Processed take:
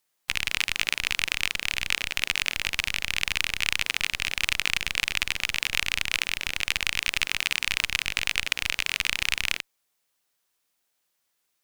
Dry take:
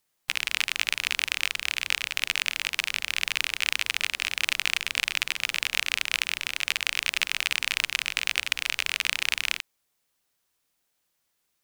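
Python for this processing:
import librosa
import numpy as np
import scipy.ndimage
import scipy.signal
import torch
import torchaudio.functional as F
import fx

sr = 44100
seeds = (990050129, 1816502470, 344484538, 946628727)

p1 = fx.low_shelf(x, sr, hz=260.0, db=-7.0)
p2 = fx.schmitt(p1, sr, flips_db=-28.5)
y = p1 + F.gain(torch.from_numpy(p2), -5.0).numpy()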